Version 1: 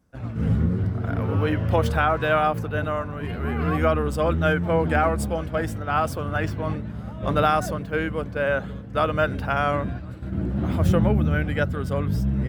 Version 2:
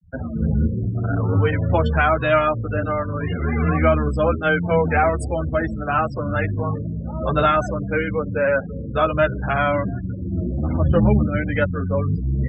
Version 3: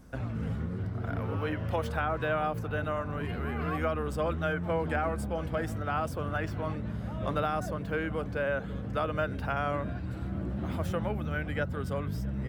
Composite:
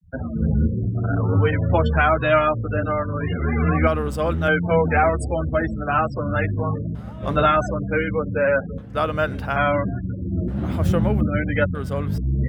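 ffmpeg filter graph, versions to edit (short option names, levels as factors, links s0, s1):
-filter_complex "[0:a]asplit=5[s0][s1][s2][s3][s4];[1:a]asplit=6[s5][s6][s7][s8][s9][s10];[s5]atrim=end=3.872[s11];[s0]atrim=start=3.868:end=4.482[s12];[s6]atrim=start=4.478:end=6.952[s13];[s1]atrim=start=6.948:end=7.362[s14];[s7]atrim=start=7.358:end=8.782[s15];[s2]atrim=start=8.778:end=9.562[s16];[s8]atrim=start=9.558:end=10.482[s17];[s3]atrim=start=10.478:end=11.212[s18];[s9]atrim=start=11.208:end=11.752[s19];[s4]atrim=start=11.748:end=12.182[s20];[s10]atrim=start=12.178[s21];[s11][s12]acrossfade=d=0.004:c1=hsin:c2=hsin[s22];[s22][s13]acrossfade=d=0.004:c1=hsin:c2=hsin[s23];[s23][s14]acrossfade=d=0.004:c1=hsin:c2=hsin[s24];[s24][s15]acrossfade=d=0.004:c1=hsin:c2=hsin[s25];[s25][s16]acrossfade=d=0.004:c1=hsin:c2=hsin[s26];[s26][s17]acrossfade=d=0.004:c1=hsin:c2=hsin[s27];[s27][s18]acrossfade=d=0.004:c1=hsin:c2=hsin[s28];[s28][s19]acrossfade=d=0.004:c1=hsin:c2=hsin[s29];[s29][s20]acrossfade=d=0.004:c1=hsin:c2=hsin[s30];[s30][s21]acrossfade=d=0.004:c1=hsin:c2=hsin"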